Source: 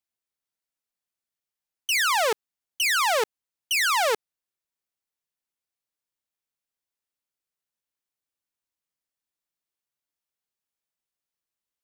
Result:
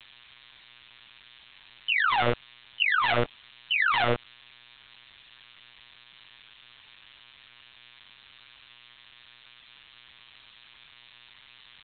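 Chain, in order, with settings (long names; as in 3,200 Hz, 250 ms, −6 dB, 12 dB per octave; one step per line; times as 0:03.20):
spike at every zero crossing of −28 dBFS
comb filter 4 ms, depth 73%
leveller curve on the samples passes 1
one-pitch LPC vocoder at 8 kHz 120 Hz
level −5.5 dB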